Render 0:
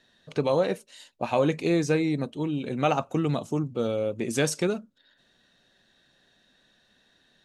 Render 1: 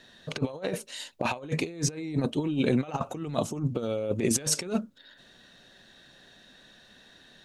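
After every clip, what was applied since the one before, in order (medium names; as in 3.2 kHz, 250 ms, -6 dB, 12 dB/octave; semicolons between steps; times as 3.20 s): compressor with a negative ratio -31 dBFS, ratio -0.5; trim +3 dB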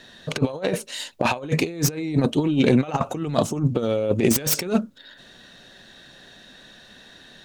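self-modulated delay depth 0.084 ms; trim +7.5 dB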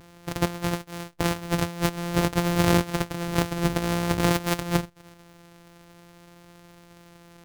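sorted samples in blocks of 256 samples; vibrato 0.5 Hz 7.6 cents; trim -3 dB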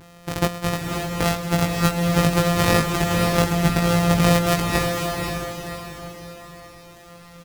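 doubling 19 ms -3 dB; echo that smears into a reverb 528 ms, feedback 43%, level -3 dB; trim +2.5 dB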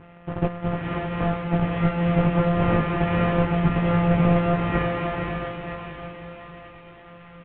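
CVSD coder 16 kbps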